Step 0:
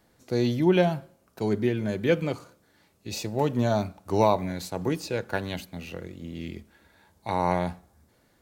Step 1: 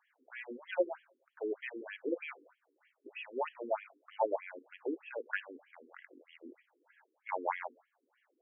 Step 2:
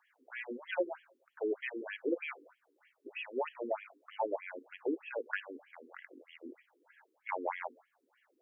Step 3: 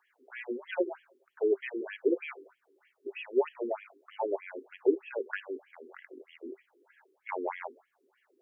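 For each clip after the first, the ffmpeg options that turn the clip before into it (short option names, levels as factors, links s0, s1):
-af "aemphasis=mode=production:type=riaa,afftfilt=real='re*between(b*sr/1024,320*pow(2400/320,0.5+0.5*sin(2*PI*3.2*pts/sr))/1.41,320*pow(2400/320,0.5+0.5*sin(2*PI*3.2*pts/sr))*1.41)':imag='im*between(b*sr/1024,320*pow(2400/320,0.5+0.5*sin(2*PI*3.2*pts/sr))/1.41,320*pow(2400/320,0.5+0.5*sin(2*PI*3.2*pts/sr))*1.41)':win_size=1024:overlap=0.75,volume=0.708"
-filter_complex "[0:a]acrossover=split=380|3000[s0][s1][s2];[s1]acompressor=threshold=0.0158:ratio=6[s3];[s0][s3][s2]amix=inputs=3:normalize=0,volume=1.41"
-af "equalizer=f=390:t=o:w=0.29:g=14"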